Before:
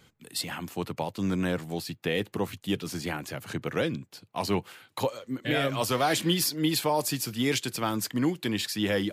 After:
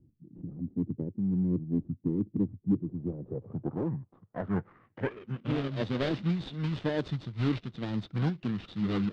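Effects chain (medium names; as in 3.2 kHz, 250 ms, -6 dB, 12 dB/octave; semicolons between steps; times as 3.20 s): median filter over 41 samples; low-pass sweep 360 Hz -> 5.2 kHz, 2.62–5.70 s; in parallel at -11 dB: overload inside the chain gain 24 dB; on the sum: formant shift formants -5 st; random flutter of the level, depth 55%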